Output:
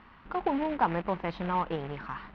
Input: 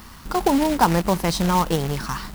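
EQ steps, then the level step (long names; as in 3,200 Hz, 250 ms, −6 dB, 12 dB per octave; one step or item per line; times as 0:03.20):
low-pass filter 2,800 Hz 24 dB per octave
high-frequency loss of the air 70 metres
low-shelf EQ 220 Hz −10 dB
−7.5 dB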